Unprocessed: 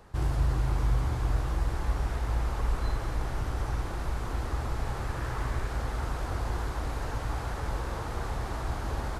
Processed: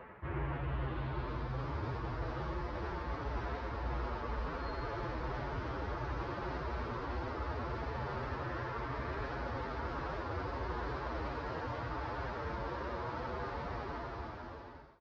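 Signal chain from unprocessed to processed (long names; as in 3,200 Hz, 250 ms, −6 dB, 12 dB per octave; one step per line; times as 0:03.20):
fade-out on the ending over 2.90 s
high-pass filter 300 Hz 6 dB per octave
notch filter 740 Hz, Q 12
reversed playback
downward compressor 12 to 1, threshold −47 dBFS, peak gain reduction 15 dB
reversed playback
phase-vocoder stretch with locked phases 1.7×
low-pass filter sweep 2,200 Hz → 4,900 Hz, 0:00.39–0:01.61
head-to-tape spacing loss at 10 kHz 39 dB
on a send: single-tap delay 88 ms −8 dB
on the sum: wrong playback speed 24 fps film run at 25 fps
level +14 dB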